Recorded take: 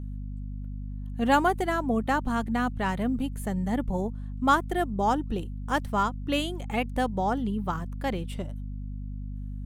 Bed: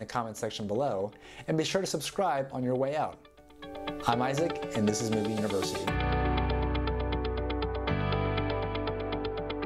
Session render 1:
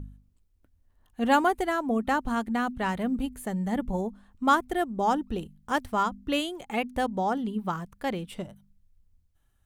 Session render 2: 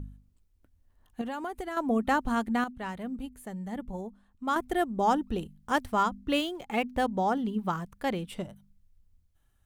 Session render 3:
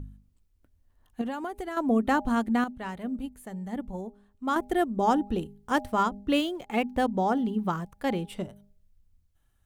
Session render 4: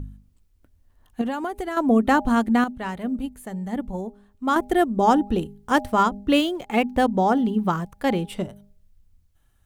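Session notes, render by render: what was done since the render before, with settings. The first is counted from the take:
de-hum 50 Hz, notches 5
1.21–1.77 compressor 8:1, threshold -32 dBFS; 2.64–4.56 gain -8 dB; 6.12–7.63 median filter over 5 samples
de-hum 203.8 Hz, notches 4; dynamic EQ 280 Hz, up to +4 dB, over -38 dBFS, Q 0.76
gain +6 dB

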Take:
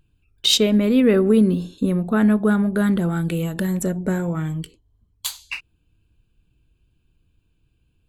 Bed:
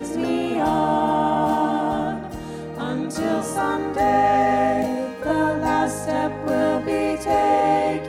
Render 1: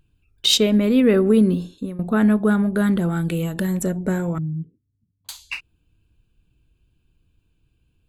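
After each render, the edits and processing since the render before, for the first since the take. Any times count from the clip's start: 1.55–1.99 fade out, to -17 dB; 4.38–5.29 Butterworth band-pass 170 Hz, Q 1.1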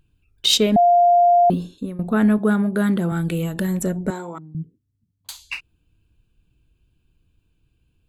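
0.76–1.5 bleep 700 Hz -10.5 dBFS; 2.38–3.12 HPF 120 Hz; 4.1–4.55 speaker cabinet 400–9400 Hz, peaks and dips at 570 Hz -7 dB, 930 Hz +5 dB, 1700 Hz -9 dB, 2600 Hz -8 dB, 4200 Hz +7 dB, 6100 Hz -6 dB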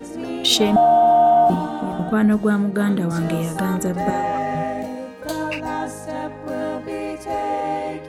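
add bed -5.5 dB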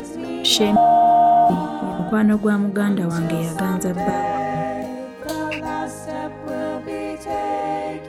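upward compressor, threshold -29 dBFS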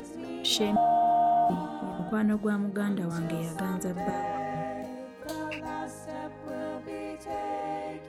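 gain -10 dB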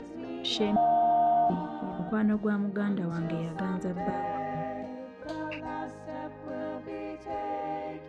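air absorption 150 m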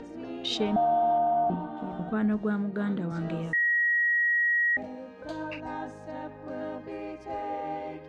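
1.18–1.77 air absorption 270 m; 3.53–4.77 bleep 1900 Hz -21.5 dBFS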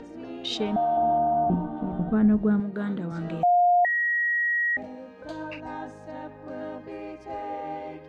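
0.97–2.6 tilt -3 dB/oct; 3.43–3.85 bleep 708 Hz -16 dBFS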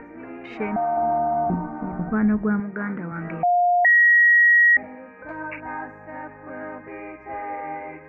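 EQ curve 670 Hz 0 dB, 960 Hz +6 dB, 1500 Hz +9 dB, 2300 Hz +11 dB, 3300 Hz -24 dB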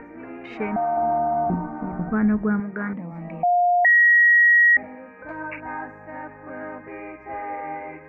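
2.93–3.53 fixed phaser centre 390 Hz, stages 6

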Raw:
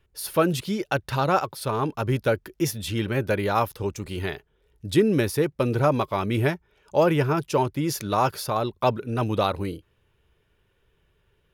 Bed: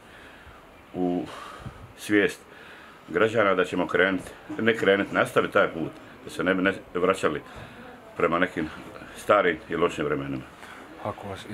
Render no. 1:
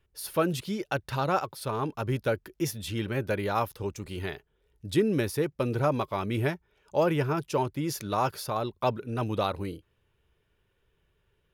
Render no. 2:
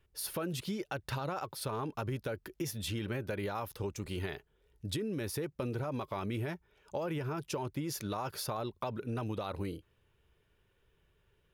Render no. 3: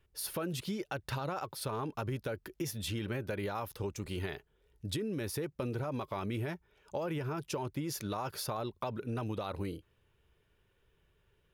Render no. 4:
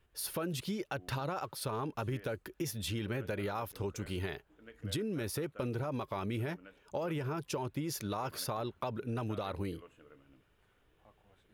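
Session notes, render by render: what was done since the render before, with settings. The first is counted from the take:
gain -5 dB
limiter -22.5 dBFS, peak gain reduction 9.5 dB; compressor, threshold -33 dBFS, peak gain reduction 7 dB
nothing audible
add bed -32.5 dB

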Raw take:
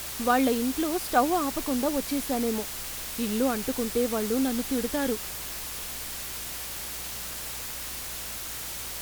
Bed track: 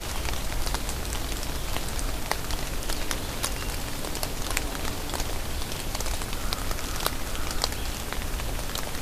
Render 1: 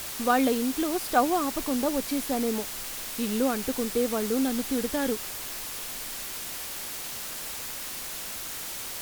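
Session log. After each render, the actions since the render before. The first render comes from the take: de-hum 60 Hz, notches 3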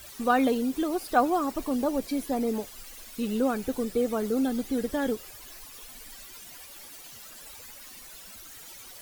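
denoiser 14 dB, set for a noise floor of -37 dBFS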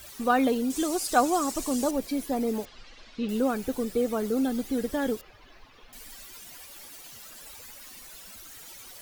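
0.7–1.91 bell 7400 Hz +14.5 dB 1.4 oct; 2.65–3.29 LPF 4700 Hz 24 dB/oct; 5.21–5.93 air absorption 280 m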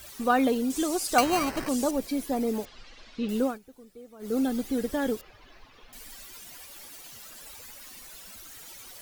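1.18–1.69 sample-rate reducer 3500 Hz; 3.43–4.35 dip -21 dB, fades 0.16 s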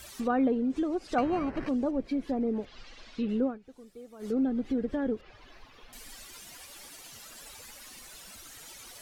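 treble ducked by the level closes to 1300 Hz, closed at -24 dBFS; dynamic EQ 940 Hz, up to -7 dB, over -42 dBFS, Q 0.86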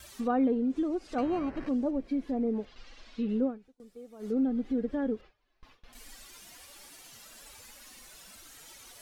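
harmonic-percussive split percussive -9 dB; gate with hold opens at -43 dBFS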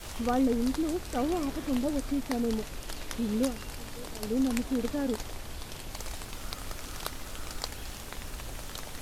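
add bed track -9.5 dB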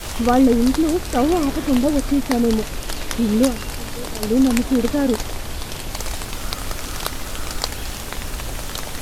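gain +12 dB; limiter -1 dBFS, peak gain reduction 1.5 dB

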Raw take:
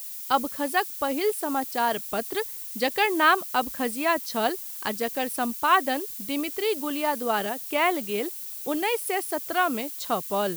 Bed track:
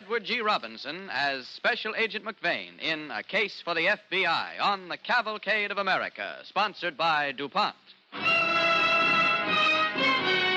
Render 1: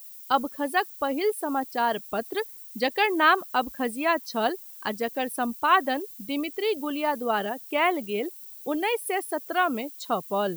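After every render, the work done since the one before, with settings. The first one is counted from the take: denoiser 11 dB, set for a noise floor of -37 dBFS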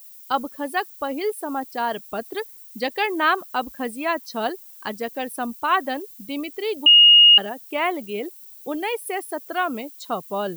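6.86–7.38 bleep 2860 Hz -7.5 dBFS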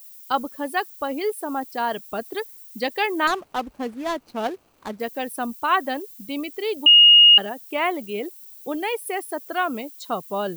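3.27–5 median filter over 25 samples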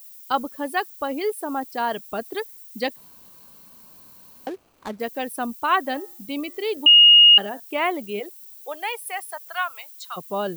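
2.96–4.47 room tone; 5.84–7.6 de-hum 116.3 Hz, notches 17; 8.19–10.16 HPF 390 Hz -> 1200 Hz 24 dB/oct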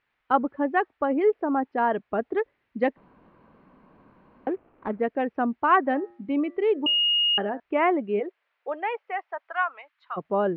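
inverse Chebyshev low-pass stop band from 8400 Hz, stop band 70 dB; bell 330 Hz +5 dB 1.6 oct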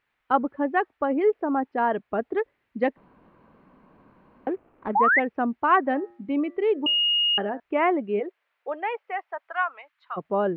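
4.95–5.2 painted sound rise 770–2200 Hz -19 dBFS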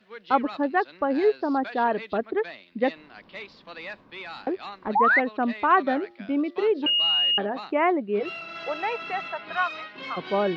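add bed track -13 dB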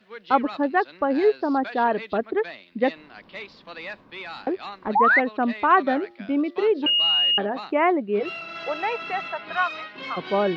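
gain +2 dB

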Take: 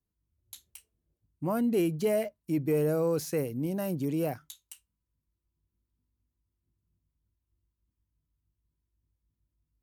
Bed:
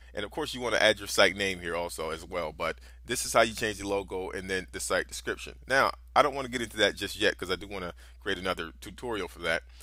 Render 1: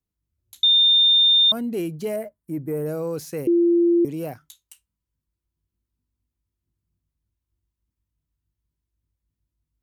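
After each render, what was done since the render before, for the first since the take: 0.63–1.52 bleep 3620 Hz -12.5 dBFS; 2.16–2.86 band shelf 4000 Hz -13 dB; 3.47–4.05 bleep 343 Hz -14 dBFS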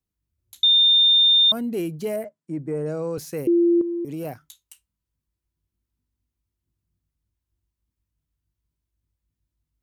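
2.24–3.18 elliptic band-pass 140–7700 Hz; 3.81–4.25 compressor, threshold -26 dBFS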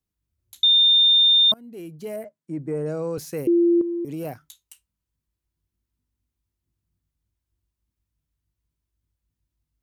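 1.54–2.67 fade in, from -23 dB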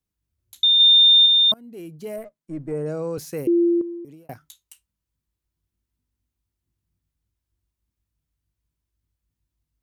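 0.8–1.26 gain +3 dB; 2.18–2.72 half-wave gain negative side -3 dB; 3.63–4.29 fade out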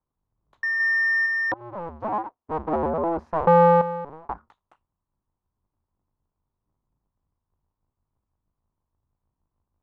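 cycle switcher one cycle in 2, inverted; synth low-pass 1000 Hz, resonance Q 3.4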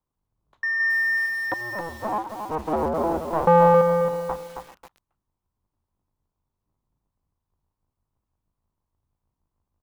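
echo 0.392 s -20.5 dB; lo-fi delay 0.27 s, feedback 35%, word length 7-bit, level -6 dB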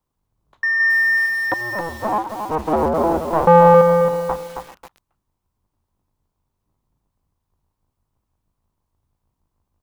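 gain +6 dB; limiter -3 dBFS, peak gain reduction 1.5 dB

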